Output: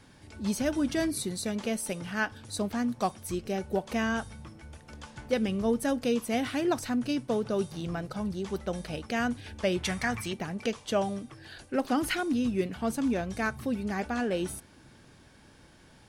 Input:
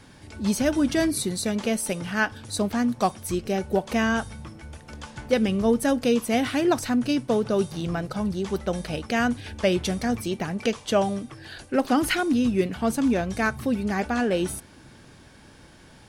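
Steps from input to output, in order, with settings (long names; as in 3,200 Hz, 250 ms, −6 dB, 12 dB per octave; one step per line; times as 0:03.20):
0:09.83–0:10.33: octave-band graphic EQ 125/250/500/1,000/2,000/8,000 Hz +5/−4/−4/+7/+11/+4 dB
level −6 dB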